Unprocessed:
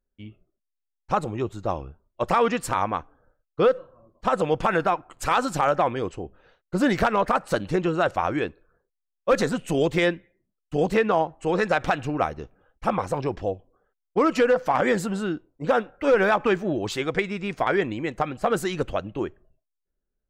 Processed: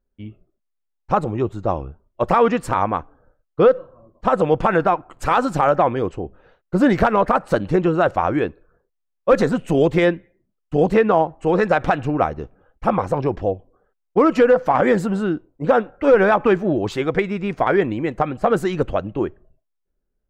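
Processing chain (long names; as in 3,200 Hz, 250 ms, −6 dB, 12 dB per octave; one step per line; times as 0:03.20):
high-shelf EQ 2,300 Hz −11.5 dB
level +6.5 dB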